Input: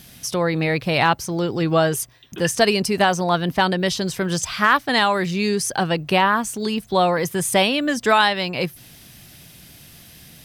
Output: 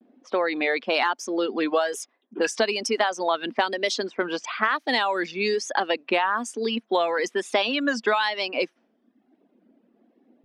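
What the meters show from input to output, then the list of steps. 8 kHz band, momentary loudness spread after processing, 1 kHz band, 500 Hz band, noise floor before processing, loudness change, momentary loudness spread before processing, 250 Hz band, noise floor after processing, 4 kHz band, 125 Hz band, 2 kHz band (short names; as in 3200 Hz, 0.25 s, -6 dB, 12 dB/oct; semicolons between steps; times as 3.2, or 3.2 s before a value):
-9.0 dB, 5 LU, -5.5 dB, -3.5 dB, -46 dBFS, -5.0 dB, 7 LU, -7.5 dB, -69 dBFS, -5.0 dB, -23.5 dB, -4.0 dB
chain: reverb removal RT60 1.1 s; elliptic high-pass 230 Hz, stop band 40 dB; low-pass opened by the level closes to 320 Hz, open at -18.5 dBFS; LPF 5700 Hz 12 dB/oct; low shelf 390 Hz -5 dB; compressor 5:1, threshold -24 dBFS, peak gain reduction 11.5 dB; vibrato 1.1 Hz 90 cents; gain +4.5 dB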